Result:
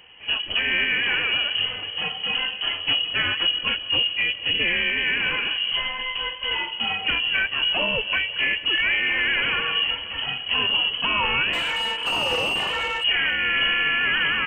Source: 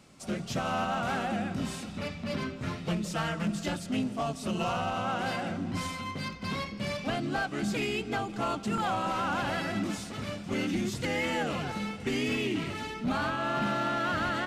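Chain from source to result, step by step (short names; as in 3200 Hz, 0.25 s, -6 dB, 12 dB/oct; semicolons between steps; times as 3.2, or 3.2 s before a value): inverted band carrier 3100 Hz; 11.53–13.04 overdrive pedal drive 19 dB, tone 1300 Hz, clips at -20 dBFS; gain +8 dB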